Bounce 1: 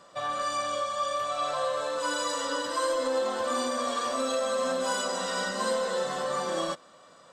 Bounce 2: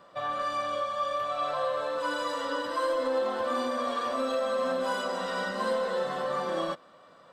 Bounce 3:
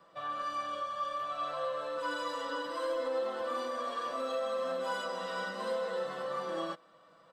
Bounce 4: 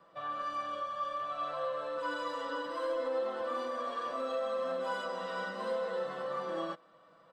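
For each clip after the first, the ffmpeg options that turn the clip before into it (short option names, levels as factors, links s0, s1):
-af "equalizer=f=7200:t=o:w=1.1:g=-15"
-filter_complex "[0:a]aecho=1:1:6.1:0.47,acrossover=split=170|1100|2300[s0][s1][s2][s3];[s0]acompressor=threshold=0.00112:ratio=6[s4];[s4][s1][s2][s3]amix=inputs=4:normalize=0,volume=0.447"
-af "highshelf=f=4300:g=-8.5"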